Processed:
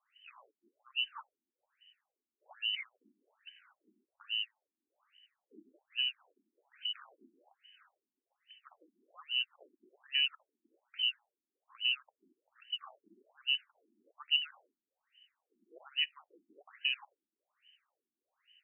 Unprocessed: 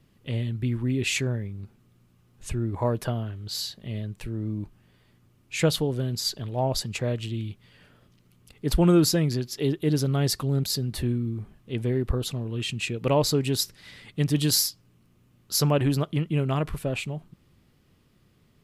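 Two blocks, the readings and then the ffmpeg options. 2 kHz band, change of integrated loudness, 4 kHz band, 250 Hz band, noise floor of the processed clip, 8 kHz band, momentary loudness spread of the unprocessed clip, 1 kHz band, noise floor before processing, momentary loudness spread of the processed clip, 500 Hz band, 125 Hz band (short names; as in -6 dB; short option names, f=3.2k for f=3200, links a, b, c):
-3.0 dB, -8.5 dB, -2.0 dB, under -40 dB, under -85 dBFS, under -40 dB, 12 LU, -21.0 dB, -62 dBFS, 10 LU, under -35 dB, under -40 dB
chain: -filter_complex "[0:a]highshelf=f=2.4k:g=-6,asplit=2[a][b];[b]acompressor=threshold=-31dB:ratio=20,volume=1dB[c];[a][c]amix=inputs=2:normalize=0,lowpass=f=2.6k:t=q:w=0.5098,lowpass=f=2.6k:t=q:w=0.6013,lowpass=f=2.6k:t=q:w=0.9,lowpass=f=2.6k:t=q:w=2.563,afreqshift=-3100,afftfilt=real='re*between(b*sr/1024,260*pow(2300/260,0.5+0.5*sin(2*PI*1.2*pts/sr))/1.41,260*pow(2300/260,0.5+0.5*sin(2*PI*1.2*pts/sr))*1.41)':imag='im*between(b*sr/1024,260*pow(2300/260,0.5+0.5*sin(2*PI*1.2*pts/sr))/1.41,260*pow(2300/260,0.5+0.5*sin(2*PI*1.2*pts/sr))*1.41)':win_size=1024:overlap=0.75,volume=-8dB"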